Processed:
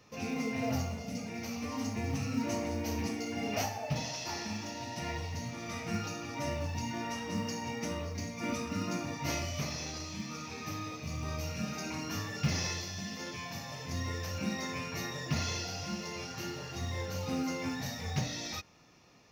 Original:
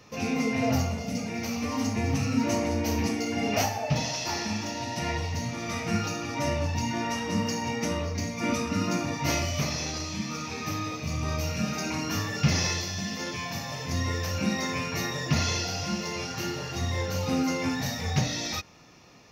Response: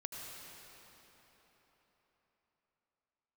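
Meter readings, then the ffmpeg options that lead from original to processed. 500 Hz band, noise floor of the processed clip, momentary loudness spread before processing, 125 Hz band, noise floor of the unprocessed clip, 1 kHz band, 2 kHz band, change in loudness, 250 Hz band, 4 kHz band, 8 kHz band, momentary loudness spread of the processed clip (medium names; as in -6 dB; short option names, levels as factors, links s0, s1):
-7.5 dB, -44 dBFS, 6 LU, -7.5 dB, -36 dBFS, -7.5 dB, -7.5 dB, -7.5 dB, -7.5 dB, -7.5 dB, -7.5 dB, 6 LU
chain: -af "acrusher=bits=8:mode=log:mix=0:aa=0.000001,volume=0.422"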